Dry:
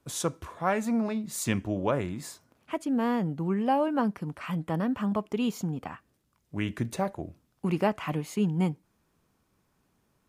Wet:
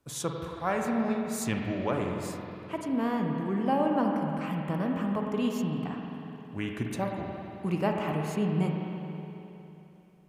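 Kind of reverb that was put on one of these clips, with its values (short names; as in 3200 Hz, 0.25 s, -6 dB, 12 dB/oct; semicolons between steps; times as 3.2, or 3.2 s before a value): spring tank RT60 3.2 s, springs 45/52 ms, chirp 35 ms, DRR 1 dB; gain -3 dB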